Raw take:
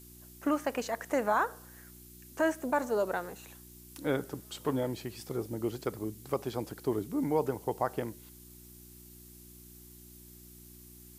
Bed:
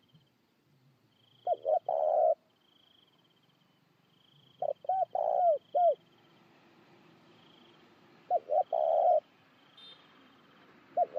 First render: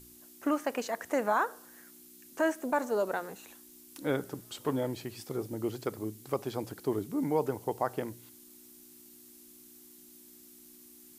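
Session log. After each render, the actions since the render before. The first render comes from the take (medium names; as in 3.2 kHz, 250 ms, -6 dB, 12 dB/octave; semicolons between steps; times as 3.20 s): de-hum 60 Hz, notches 3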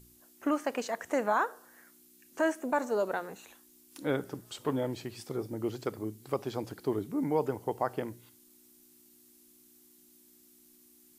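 noise print and reduce 6 dB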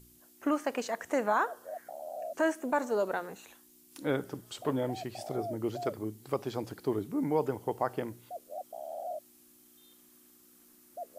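add bed -13 dB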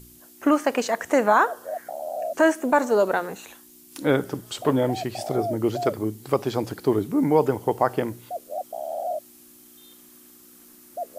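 trim +10 dB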